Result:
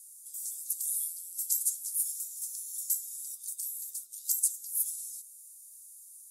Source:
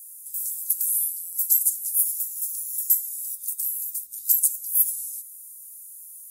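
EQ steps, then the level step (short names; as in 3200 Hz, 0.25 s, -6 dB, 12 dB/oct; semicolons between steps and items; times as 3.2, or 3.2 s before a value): BPF 340–7800 Hz; 0.0 dB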